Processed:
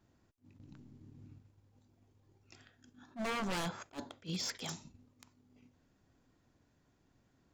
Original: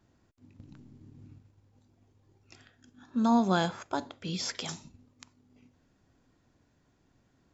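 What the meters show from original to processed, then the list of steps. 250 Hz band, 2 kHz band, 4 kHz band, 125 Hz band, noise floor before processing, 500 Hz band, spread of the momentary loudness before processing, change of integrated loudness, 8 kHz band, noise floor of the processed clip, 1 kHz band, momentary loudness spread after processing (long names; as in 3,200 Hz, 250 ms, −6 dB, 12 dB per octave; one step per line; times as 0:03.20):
−13.5 dB, −4.0 dB, −4.5 dB, −8.0 dB, −70 dBFS, −9.5 dB, 13 LU, −9.5 dB, can't be measured, −73 dBFS, −11.0 dB, 21 LU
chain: wave folding −27.5 dBFS
level that may rise only so fast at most 320 dB per second
level −3.5 dB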